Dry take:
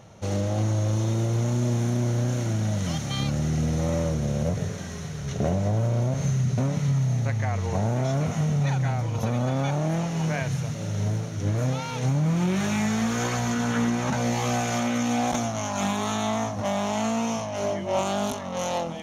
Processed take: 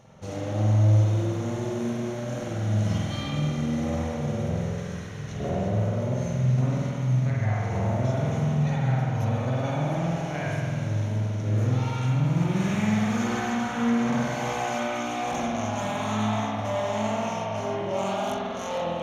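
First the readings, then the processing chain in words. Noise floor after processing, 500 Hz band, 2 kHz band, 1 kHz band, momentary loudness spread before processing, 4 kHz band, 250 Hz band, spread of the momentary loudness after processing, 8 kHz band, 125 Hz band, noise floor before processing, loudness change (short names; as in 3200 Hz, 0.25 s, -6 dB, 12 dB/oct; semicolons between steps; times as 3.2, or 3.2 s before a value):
-33 dBFS, -0.5 dB, -0.5 dB, -0.5 dB, 4 LU, -3.0 dB, -1.0 dB, 6 LU, -7.5 dB, 0.0 dB, -33 dBFS, -0.5 dB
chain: reverse; upward compressor, threshold -35 dBFS; reverse; spring tank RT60 2 s, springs 47 ms, chirp 75 ms, DRR -6 dB; gain -7.5 dB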